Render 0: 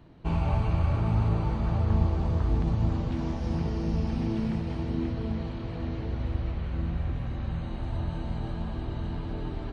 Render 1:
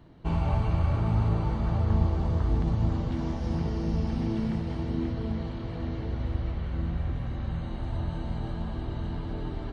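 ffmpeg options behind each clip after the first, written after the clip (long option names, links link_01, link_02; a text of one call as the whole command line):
ffmpeg -i in.wav -af "bandreject=frequency=2500:width=13" out.wav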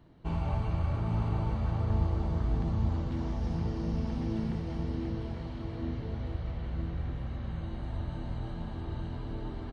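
ffmpeg -i in.wav -af "aecho=1:1:849:0.447,volume=-5dB" out.wav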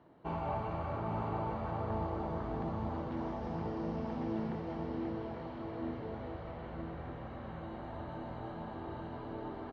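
ffmpeg -i in.wav -af "bandpass=frequency=760:width_type=q:width=0.74:csg=0,volume=4dB" out.wav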